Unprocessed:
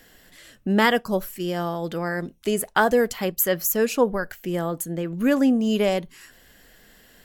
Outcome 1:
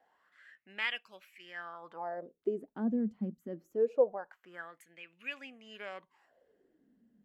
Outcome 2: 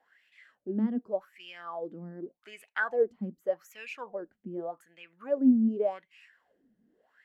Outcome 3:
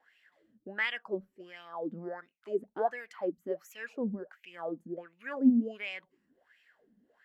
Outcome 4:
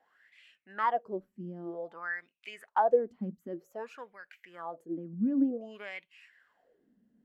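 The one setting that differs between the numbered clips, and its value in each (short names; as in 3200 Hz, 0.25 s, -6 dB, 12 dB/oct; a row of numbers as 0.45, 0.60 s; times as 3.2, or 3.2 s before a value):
wah, rate: 0.24, 0.85, 1.4, 0.53 Hz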